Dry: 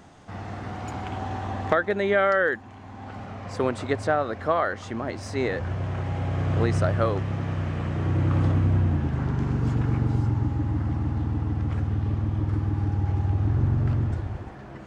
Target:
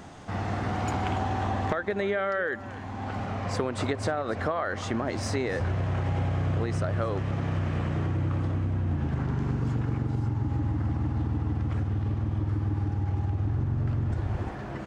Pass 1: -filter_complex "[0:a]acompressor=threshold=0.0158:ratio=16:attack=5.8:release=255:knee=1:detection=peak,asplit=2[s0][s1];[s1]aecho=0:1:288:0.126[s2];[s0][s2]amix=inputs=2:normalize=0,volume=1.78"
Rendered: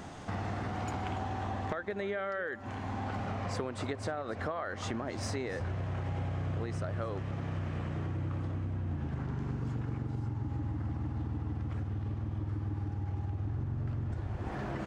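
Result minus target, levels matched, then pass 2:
compression: peak gain reduction +7.5 dB
-filter_complex "[0:a]acompressor=threshold=0.0398:ratio=16:attack=5.8:release=255:knee=1:detection=peak,asplit=2[s0][s1];[s1]aecho=0:1:288:0.126[s2];[s0][s2]amix=inputs=2:normalize=0,volume=1.78"

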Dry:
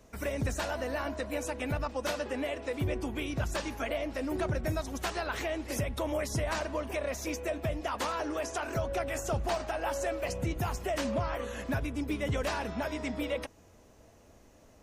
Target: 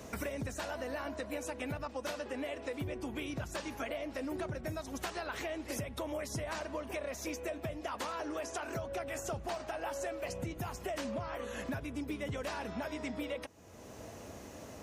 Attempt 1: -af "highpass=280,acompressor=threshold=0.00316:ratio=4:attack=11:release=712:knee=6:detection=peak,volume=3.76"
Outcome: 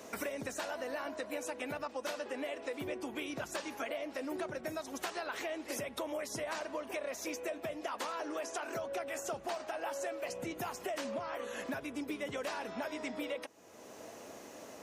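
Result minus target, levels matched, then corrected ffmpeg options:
125 Hz band -11.0 dB
-af "highpass=80,acompressor=threshold=0.00316:ratio=4:attack=11:release=712:knee=6:detection=peak,volume=3.76"

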